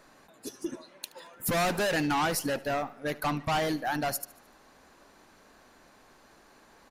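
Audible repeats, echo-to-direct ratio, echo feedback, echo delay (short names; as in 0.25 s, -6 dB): 3, -19.0 dB, 49%, 74 ms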